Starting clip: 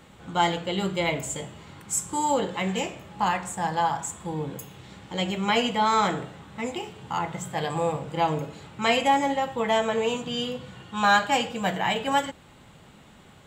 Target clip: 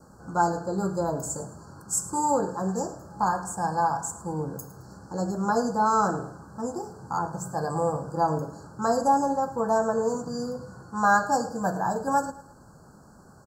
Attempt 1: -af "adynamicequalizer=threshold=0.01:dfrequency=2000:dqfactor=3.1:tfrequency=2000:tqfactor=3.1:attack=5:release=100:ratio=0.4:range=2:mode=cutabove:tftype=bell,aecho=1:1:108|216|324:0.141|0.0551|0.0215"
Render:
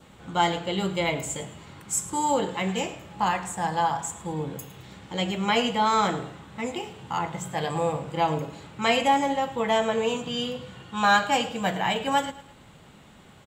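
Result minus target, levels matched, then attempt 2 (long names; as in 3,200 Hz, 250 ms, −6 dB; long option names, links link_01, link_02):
2,000 Hz band +4.0 dB
-af "adynamicequalizer=threshold=0.01:dfrequency=2000:dqfactor=3.1:tfrequency=2000:tqfactor=3.1:attack=5:release=100:ratio=0.4:range=2:mode=cutabove:tftype=bell,asuperstop=centerf=2700:order=20:qfactor=0.98,aecho=1:1:108|216|324:0.141|0.0551|0.0215"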